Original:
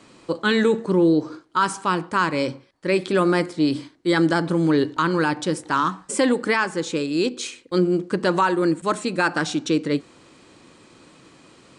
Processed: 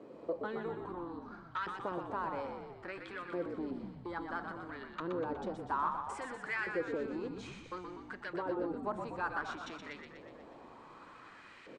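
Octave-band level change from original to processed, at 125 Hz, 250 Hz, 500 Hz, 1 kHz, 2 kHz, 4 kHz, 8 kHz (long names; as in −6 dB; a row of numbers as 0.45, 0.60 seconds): −22.5, −21.0, −17.5, −14.5, −16.0, −24.0, −27.5 decibels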